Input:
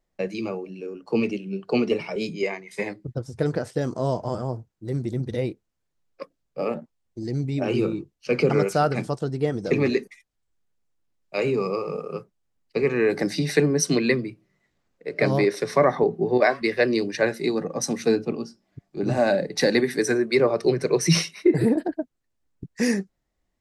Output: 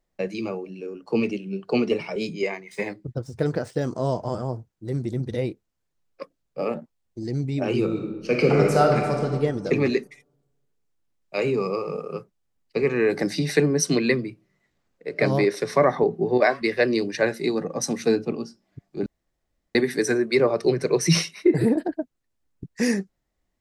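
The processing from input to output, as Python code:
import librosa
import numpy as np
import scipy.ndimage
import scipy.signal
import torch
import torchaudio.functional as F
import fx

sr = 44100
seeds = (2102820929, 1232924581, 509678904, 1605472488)

y = fx.median_filter(x, sr, points=3, at=(2.54, 3.84))
y = fx.reverb_throw(y, sr, start_s=7.85, length_s=1.49, rt60_s=1.4, drr_db=1.0)
y = fx.edit(y, sr, fx.room_tone_fill(start_s=19.06, length_s=0.69), tone=tone)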